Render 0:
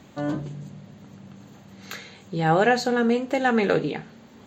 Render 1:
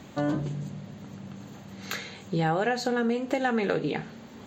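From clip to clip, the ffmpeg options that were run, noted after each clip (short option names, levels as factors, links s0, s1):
-af "acompressor=threshold=0.0501:ratio=6,volume=1.41"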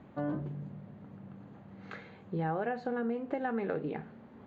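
-af "lowpass=1600,volume=0.447"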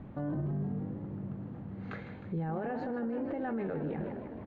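-filter_complex "[0:a]aemphasis=mode=reproduction:type=bsi,asplit=8[s0][s1][s2][s3][s4][s5][s6][s7];[s1]adelay=155,afreqshift=50,volume=0.282[s8];[s2]adelay=310,afreqshift=100,volume=0.164[s9];[s3]adelay=465,afreqshift=150,volume=0.0944[s10];[s4]adelay=620,afreqshift=200,volume=0.055[s11];[s5]adelay=775,afreqshift=250,volume=0.032[s12];[s6]adelay=930,afreqshift=300,volume=0.0184[s13];[s7]adelay=1085,afreqshift=350,volume=0.0107[s14];[s0][s8][s9][s10][s11][s12][s13][s14]amix=inputs=8:normalize=0,alimiter=level_in=1.88:limit=0.0631:level=0:latency=1:release=33,volume=0.531,volume=1.19"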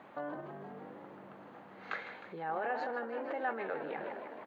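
-af "highpass=750,volume=2.24"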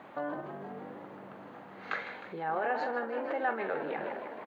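-filter_complex "[0:a]asplit=2[s0][s1];[s1]adelay=45,volume=0.251[s2];[s0][s2]amix=inputs=2:normalize=0,volume=1.58"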